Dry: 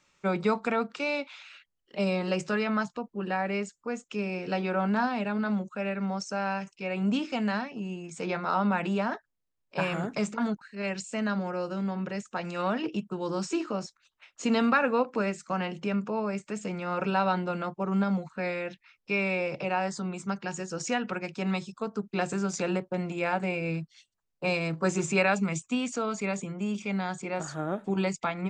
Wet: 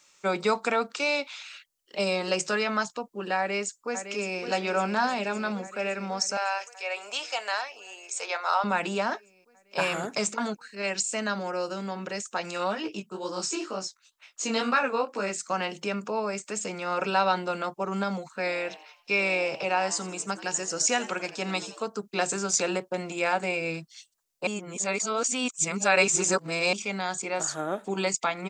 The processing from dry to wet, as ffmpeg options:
ffmpeg -i in.wav -filter_complex "[0:a]asplit=2[link_01][link_02];[link_02]afade=type=in:start_time=3.38:duration=0.01,afade=type=out:start_time=4.4:duration=0.01,aecho=0:1:560|1120|1680|2240|2800|3360|3920|4480|5040|5600|6160|6720:0.334965|0.251224|0.188418|0.141314|0.105985|0.0794889|0.0596167|0.0447125|0.0335344|0.0251508|0.0188631|0.0141473[link_03];[link_01][link_03]amix=inputs=2:normalize=0,asettb=1/sr,asplit=3[link_04][link_05][link_06];[link_04]atrim=end=6.374[link_07];[link_05]atrim=start=6.37:end=8.64,asetpts=PTS-STARTPTS,afade=type=in:duration=0.004:curve=qsin,afade=type=out:start_time=2.266:duration=0.004:curve=qsin,highpass=frequency=560:width=0.5412,highpass=frequency=560:width=1.3066[link_08];[link_06]atrim=start=8.636[link_09];[link_07][link_08]acrossfade=duration=0.004:curve1=hsin:curve2=qsin[link_10];[link_10][link_09]acrossfade=duration=0.004:curve1=qsin:curve2=hsin,asplit=3[link_11][link_12][link_13];[link_11]afade=type=out:start_time=12.57:duration=0.02[link_14];[link_12]flanger=delay=15.5:depth=7.2:speed=2.1,afade=type=in:start_time=12.57:duration=0.02,afade=type=out:start_time=15.29:duration=0.02[link_15];[link_13]afade=type=in:start_time=15.29:duration=0.02[link_16];[link_14][link_15][link_16]amix=inputs=3:normalize=0,asplit=3[link_17][link_18][link_19];[link_17]afade=type=out:start_time=18.45:duration=0.02[link_20];[link_18]asplit=5[link_21][link_22][link_23][link_24][link_25];[link_22]adelay=85,afreqshift=130,volume=-17dB[link_26];[link_23]adelay=170,afreqshift=260,volume=-23.2dB[link_27];[link_24]adelay=255,afreqshift=390,volume=-29.4dB[link_28];[link_25]adelay=340,afreqshift=520,volume=-35.6dB[link_29];[link_21][link_26][link_27][link_28][link_29]amix=inputs=5:normalize=0,afade=type=in:start_time=18.45:duration=0.02,afade=type=out:start_time=21.83:duration=0.02[link_30];[link_19]afade=type=in:start_time=21.83:duration=0.02[link_31];[link_20][link_30][link_31]amix=inputs=3:normalize=0,asplit=3[link_32][link_33][link_34];[link_32]atrim=end=24.472[link_35];[link_33]atrim=start=24.468:end=26.732,asetpts=PTS-STARTPTS,areverse[link_36];[link_34]atrim=start=26.728[link_37];[link_35][link_36]acrossfade=duration=0.004:curve1=hsin:curve2=hsin[link_38];[link_38][link_37]acrossfade=duration=0.004:curve1=hsin:curve2=hsin,bass=frequency=250:gain=-12,treble=frequency=4000:gain=11,volume=3dB" out.wav

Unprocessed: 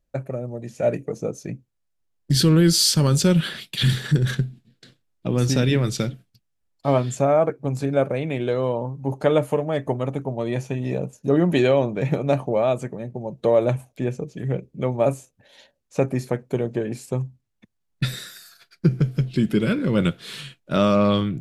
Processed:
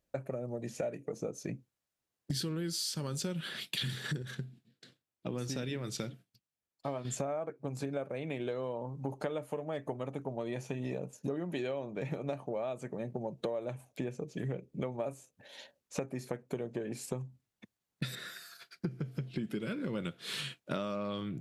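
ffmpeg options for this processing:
ffmpeg -i in.wav -filter_complex "[0:a]asettb=1/sr,asplit=3[link_01][link_02][link_03];[link_01]atrim=end=18.154[link_04];[link_02]atrim=start=18.15:end=19.47,asetpts=PTS-STARTPTS,afade=type=in:duration=0.004:curve=qsin,afade=type=out:start_time=1.316:duration=0.004:curve=qsin,acrossover=split=3100[link_05][link_06];[link_06]acompressor=threshold=-51dB:ratio=4:attack=1:release=60[link_07];[link_05][link_07]amix=inputs=2:normalize=0[link_08];[link_03]atrim=start=19.466[link_09];[link_04][link_08]acrossfade=duration=0.004:curve1=hsin:curve2=qsin[link_10];[link_10][link_09]acrossfade=duration=0.004:curve1=qsin:curve2=hsin,asplit=3[link_11][link_12][link_13];[link_11]atrim=end=4.222[link_14];[link_12]atrim=start=4.218:end=7.052,asetpts=PTS-STARTPTS,volume=-7.5dB[link_15];[link_13]atrim=start=7.048[link_16];[link_14][link_15]acrossfade=duration=0.004:curve1=hsin:curve2=hsin[link_17];[link_17][link_16]acrossfade=duration=0.004:curve1=hsin:curve2=hsin,highpass=frequency=180:poles=1,acompressor=threshold=-33dB:ratio=12" out.wav

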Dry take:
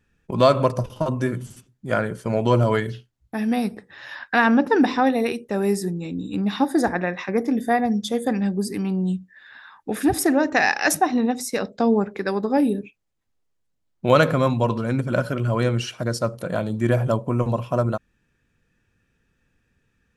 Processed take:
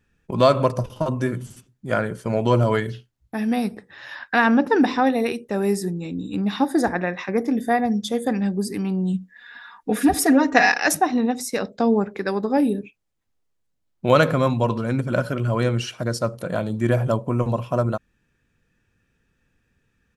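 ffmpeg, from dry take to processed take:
ffmpeg -i in.wav -filter_complex "[0:a]asplit=3[link_01][link_02][link_03];[link_01]afade=type=out:start_time=9.13:duration=0.02[link_04];[link_02]aecho=1:1:4.2:0.96,afade=type=in:start_time=9.13:duration=0.02,afade=type=out:start_time=10.79:duration=0.02[link_05];[link_03]afade=type=in:start_time=10.79:duration=0.02[link_06];[link_04][link_05][link_06]amix=inputs=3:normalize=0" out.wav

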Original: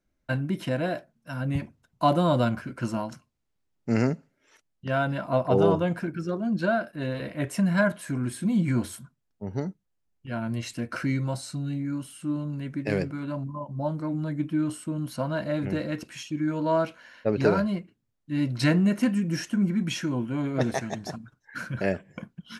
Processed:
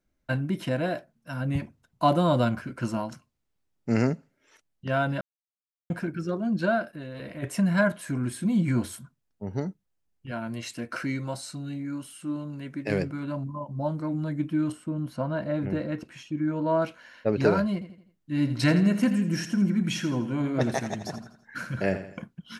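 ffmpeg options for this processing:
ffmpeg -i in.wav -filter_complex "[0:a]asplit=3[link_01][link_02][link_03];[link_01]afade=type=out:start_time=6.91:duration=0.02[link_04];[link_02]acompressor=threshold=-34dB:ratio=6:attack=3.2:release=140:knee=1:detection=peak,afade=type=in:start_time=6.91:duration=0.02,afade=type=out:start_time=7.42:duration=0.02[link_05];[link_03]afade=type=in:start_time=7.42:duration=0.02[link_06];[link_04][link_05][link_06]amix=inputs=3:normalize=0,asettb=1/sr,asplit=3[link_07][link_08][link_09];[link_07]atrim=end=10.314[link_10];[link_08]atrim=start=10.31:end=12.9,asetpts=PTS-STARTPTS,afade=type=in:duration=0.004:curve=qsin,afade=type=out:start_time=2.586:duration=0.004:curve=qsin,lowshelf=frequency=140:gain=-12[link_11];[link_09]atrim=start=12.896[link_12];[link_10][link_11]acrossfade=duration=0.004:curve1=hsin:curve2=qsin[link_13];[link_13][link_12]acrossfade=duration=0.004:curve1=qsin:curve2=hsin,asettb=1/sr,asplit=3[link_14][link_15][link_16];[link_14]atrim=end=14.724[link_17];[link_15]atrim=start=14.72:end=16.82,asetpts=PTS-STARTPTS,afade=type=in:duration=0.004:curve=qsin,afade=type=out:start_time=2.096:duration=0.004:curve=qsin,highshelf=frequency=2900:gain=-12[link_18];[link_16]atrim=start=16.816[link_19];[link_17][link_18]acrossfade=duration=0.004:curve1=hsin:curve2=qsin[link_20];[link_20][link_19]acrossfade=duration=0.004:curve1=qsin:curve2=hsin,asettb=1/sr,asplit=3[link_21][link_22][link_23];[link_21]atrim=end=17.734[link_24];[link_22]atrim=start=17.73:end=22.22,asetpts=PTS-STARTPTS,afade=type=in:duration=0.004:curve=qsin,afade=type=out:start_time=4.486:duration=0.004:curve=qsin,aecho=1:1:83|166|249|332:0.282|0.121|0.0521|0.0224,atrim=end_sample=198009[link_25];[link_23]atrim=start=22.216[link_26];[link_24][link_25]acrossfade=duration=0.004:curve1=hsin:curve2=qsin[link_27];[link_27][link_26]acrossfade=duration=0.004:curve1=qsin:curve2=hsin,asplit=3[link_28][link_29][link_30];[link_28]atrim=end=5.21,asetpts=PTS-STARTPTS,afade=type=out:start_time=5.206:duration=0.004:curve=hsin[link_31];[link_29]atrim=start=5.21:end=5.9,asetpts=PTS-STARTPTS,volume=0[link_32];[link_30]atrim=start=5.9,asetpts=PTS-STARTPTS,afade=type=in:duration=0.004:curve=hsin[link_33];[link_31][link_32][link_33]concat=n=3:v=0:a=1" out.wav

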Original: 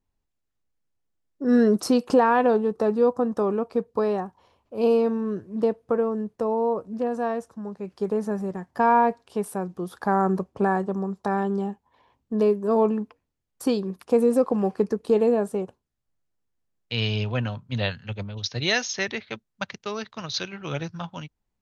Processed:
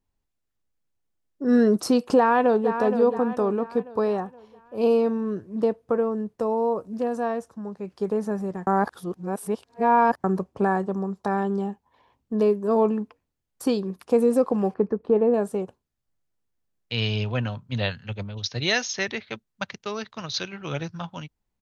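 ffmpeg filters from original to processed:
ffmpeg -i in.wav -filter_complex "[0:a]asplit=2[link_01][link_02];[link_02]afade=type=in:start_time=2.17:duration=0.01,afade=type=out:start_time=2.73:duration=0.01,aecho=0:1:470|940|1410|1880|2350:0.375837|0.169127|0.0761071|0.0342482|0.0154117[link_03];[link_01][link_03]amix=inputs=2:normalize=0,asettb=1/sr,asplit=3[link_04][link_05][link_06];[link_04]atrim=end=6.404[link_07];[link_05]atrim=start=6.4:end=7.2,asetpts=PTS-STARTPTS,afade=type=in:duration=0.004:curve=qsin,afade=type=out:start_time=0.796:duration=0.004:curve=qsin,highshelf=frequency=5500:gain=7.5[link_08];[link_06]atrim=start=7.196[link_09];[link_07][link_08]acrossfade=duration=0.004:curve1=hsin:curve2=qsin[link_10];[link_10][link_09]acrossfade=duration=0.004:curve1=qsin:curve2=hsin,asettb=1/sr,asplit=3[link_11][link_12][link_13];[link_11]atrim=end=14.744[link_14];[link_12]atrim=start=14.74:end=15.34,asetpts=PTS-STARTPTS,afade=type=in:duration=0.004:curve=qsin,afade=type=out:start_time=0.596:duration=0.004:curve=qsin,lowpass=1600[link_15];[link_13]atrim=start=15.336[link_16];[link_14][link_15]acrossfade=duration=0.004:curve1=hsin:curve2=qsin[link_17];[link_17][link_16]acrossfade=duration=0.004:curve1=qsin:curve2=hsin,asplit=3[link_18][link_19][link_20];[link_18]atrim=end=8.672[link_21];[link_19]atrim=start=8.668:end=10.242,asetpts=PTS-STARTPTS,areverse[link_22];[link_20]atrim=start=10.238[link_23];[link_21][link_22]acrossfade=duration=0.004:curve1=hsin:curve2=hsin[link_24];[link_24][link_23]acrossfade=duration=0.004:curve1=hsin:curve2=hsin" out.wav

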